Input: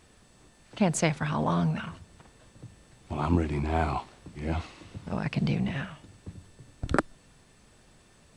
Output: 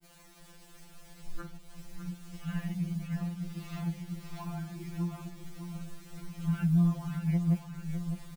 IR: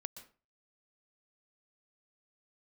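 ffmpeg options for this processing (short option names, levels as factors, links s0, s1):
-filter_complex "[0:a]areverse,acrossover=split=2900[s0][s1];[s1]acompressor=threshold=0.00251:ratio=4:attack=1:release=60[s2];[s0][s2]amix=inputs=2:normalize=0,asplit=2[s3][s4];[s4]alimiter=limit=0.15:level=0:latency=1:release=413,volume=0.891[s5];[s3][s5]amix=inputs=2:normalize=0,acompressor=threshold=0.02:ratio=8,asubboost=boost=9:cutoff=160,acrusher=bits=7:mix=0:aa=0.000001,aecho=1:1:604|1208|1812|2416|3020|3624:0.355|0.188|0.0997|0.0528|0.028|0.0148,afftfilt=real='re*2.83*eq(mod(b,8),0)':imag='im*2.83*eq(mod(b,8),0)':win_size=2048:overlap=0.75,volume=0.631"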